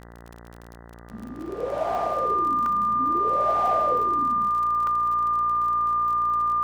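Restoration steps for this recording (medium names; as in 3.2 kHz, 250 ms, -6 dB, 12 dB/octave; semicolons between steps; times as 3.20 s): de-click; de-hum 58.2 Hz, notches 34; band-stop 1.2 kHz, Q 30; interpolate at 1.46/1.95/2.66/4.87 s, 2.2 ms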